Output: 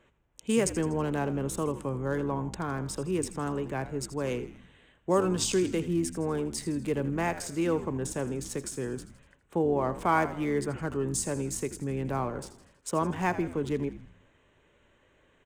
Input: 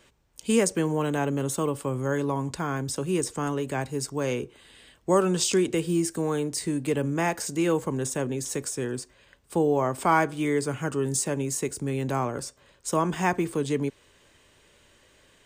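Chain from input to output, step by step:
adaptive Wiener filter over 9 samples
echo with shifted repeats 81 ms, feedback 53%, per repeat −80 Hz, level −13.5 dB
level −3.5 dB

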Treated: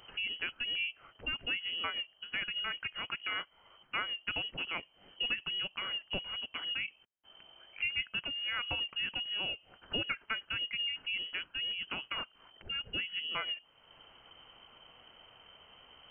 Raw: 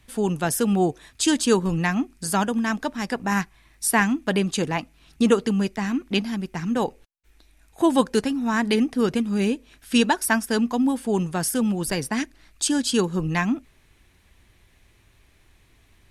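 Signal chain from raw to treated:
spectral tilt +1.5 dB per octave
downward compressor 2 to 1, threshold −49 dBFS, peak gain reduction 19 dB
voice inversion scrambler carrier 3,100 Hz
level +2.5 dB

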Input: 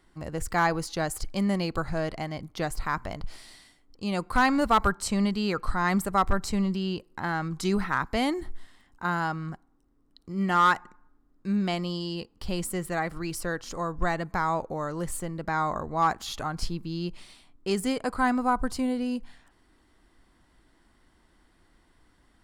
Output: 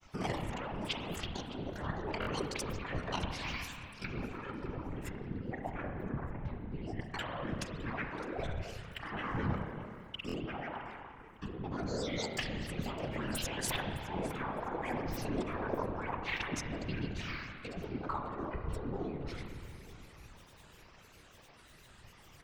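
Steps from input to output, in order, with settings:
treble cut that deepens with the level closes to 620 Hz, closed at −23 dBFS
tilt shelving filter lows −5.5 dB, about 1,300 Hz
compressor whose output falls as the input rises −40 dBFS, ratio −1
granular cloud 100 ms, spray 39 ms, pitch spread up and down by 12 semitones
on a send: delay that swaps between a low-pass and a high-pass 305 ms, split 1,900 Hz, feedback 53%, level −12 dB
on the sum: spring reverb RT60 2.1 s, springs 30 ms, chirp 45 ms, DRR 3 dB
random phases in short frames
buffer that repeats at 0:02.20/0:10.27, samples 1,024, times 2
level +1 dB

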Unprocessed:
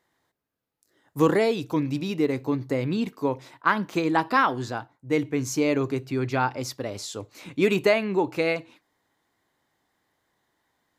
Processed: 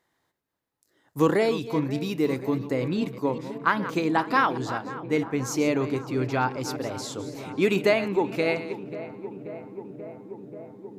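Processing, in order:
delay that plays each chunk backwards 199 ms, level −13 dB
0:01.98–0:02.67: high-shelf EQ 11,000 Hz +12 dB
on a send: feedback echo with a low-pass in the loop 534 ms, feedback 85%, low-pass 1,600 Hz, level −14.5 dB
on the sum: level −1 dB

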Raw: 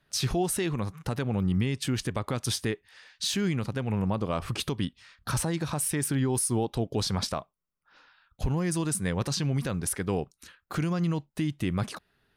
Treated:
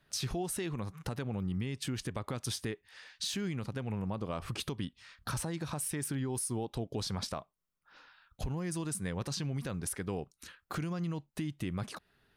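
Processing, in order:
downward compressor 2 to 1, threshold −39 dBFS, peak gain reduction 9.5 dB

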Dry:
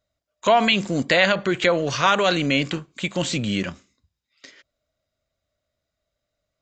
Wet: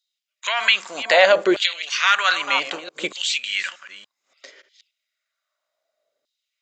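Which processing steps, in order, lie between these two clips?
delay that plays each chunk backwards 289 ms, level −13 dB
auto-filter high-pass saw down 0.64 Hz 380–3,900 Hz
level +1 dB

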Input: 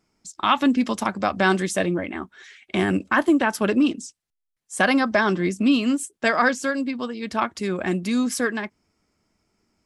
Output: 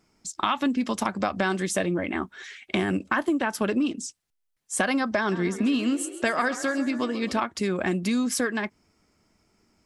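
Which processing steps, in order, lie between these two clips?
downward compressor 4 to 1, threshold −27 dBFS, peak gain reduction 12 dB
0:05.18–0:07.41: echo with shifted repeats 134 ms, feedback 60%, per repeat +35 Hz, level −13.5 dB
level +4 dB

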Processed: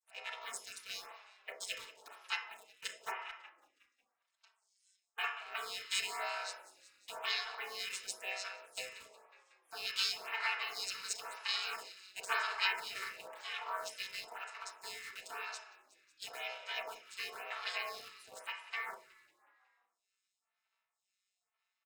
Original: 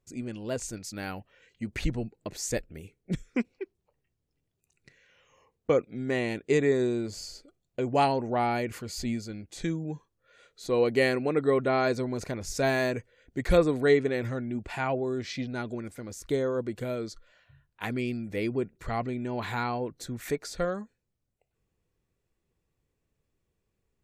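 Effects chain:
channel vocoder with a chord as carrier bare fifth, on A#2
gate on every frequency bin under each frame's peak −30 dB weak
Butterworth high-pass 350 Hz 36 dB per octave
spectral tilt +2.5 dB per octave
comb filter 4.9 ms, depth 72%
in parallel at −9 dB: log-companded quantiser 4 bits
on the sum: echo with shifted repeats 201 ms, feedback 54%, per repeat −31 Hz, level −18 dB
speed change +10%
on a send at −3 dB: convolution reverb RT60 0.60 s, pre-delay 27 ms
on the sum: phaser with staggered stages 0.98 Hz
level +11.5 dB

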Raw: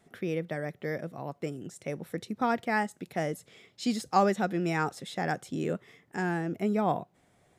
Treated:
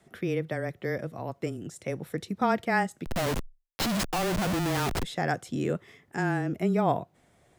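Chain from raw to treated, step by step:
0:03.05–0:05.03: comparator with hysteresis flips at −39.5 dBFS
frequency shifter −17 Hz
level +2.5 dB

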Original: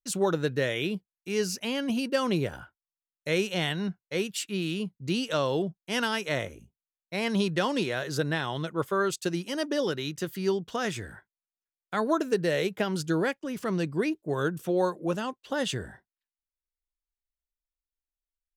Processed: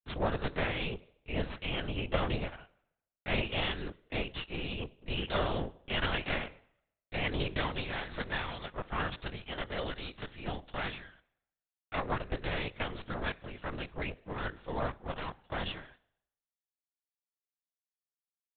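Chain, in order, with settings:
downward expander −38 dBFS
high-pass filter 390 Hz 6 dB per octave, from 0:07.59 850 Hz
half-wave rectification
convolution reverb RT60 0.80 s, pre-delay 4 ms, DRR 16 dB
linear-prediction vocoder at 8 kHz whisper

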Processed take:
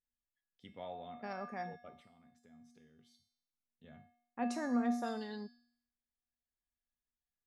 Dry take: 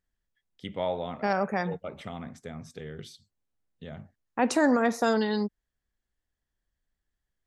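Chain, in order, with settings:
0:01.99–0:03.84: downward compressor, threshold −48 dBFS, peak gain reduction 13.5 dB
tuned comb filter 240 Hz, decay 0.67 s, harmonics odd, mix 90%
level +2 dB

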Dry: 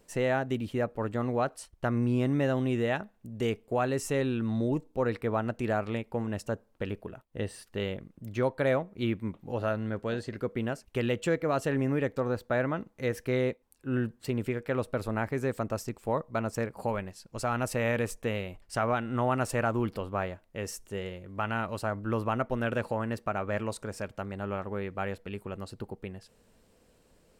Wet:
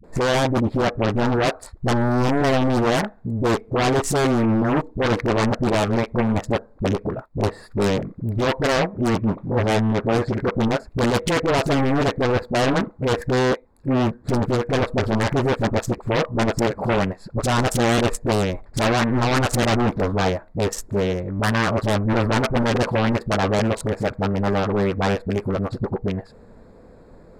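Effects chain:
adaptive Wiener filter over 15 samples
in parallel at −7 dB: sine wavefolder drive 14 dB, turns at −16 dBFS
on the sum: all-pass dispersion highs, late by 42 ms, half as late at 360 Hz
highs frequency-modulated by the lows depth 0.61 ms
level +4.5 dB

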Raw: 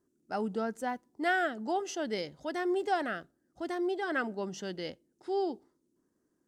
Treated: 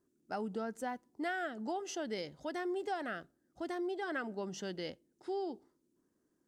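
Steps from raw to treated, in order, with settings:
downward compressor 3 to 1, threshold −34 dBFS, peak gain reduction 8 dB
level −1.5 dB

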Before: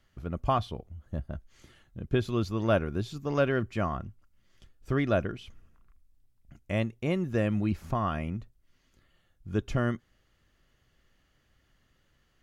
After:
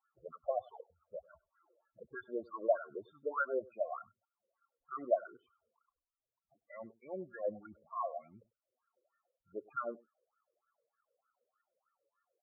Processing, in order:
LFO wah 3.3 Hz 480–1,400 Hz, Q 6
spectral peaks only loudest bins 8
single-tap delay 98 ms −23 dB
level +3.5 dB

